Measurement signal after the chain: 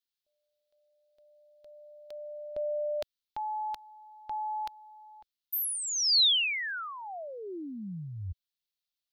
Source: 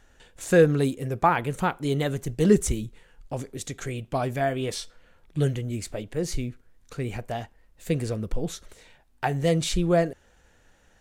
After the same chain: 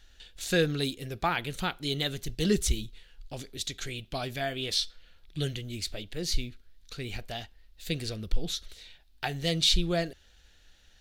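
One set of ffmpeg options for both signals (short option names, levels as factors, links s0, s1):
-af "equalizer=f=125:t=o:w=1:g=-10,equalizer=f=250:t=o:w=1:g=-7,equalizer=f=500:t=o:w=1:g=-9,equalizer=f=1000:t=o:w=1:g=-11,equalizer=f=2000:t=o:w=1:g=-4,equalizer=f=4000:t=o:w=1:g=10,equalizer=f=8000:t=o:w=1:g=-8,volume=1.41"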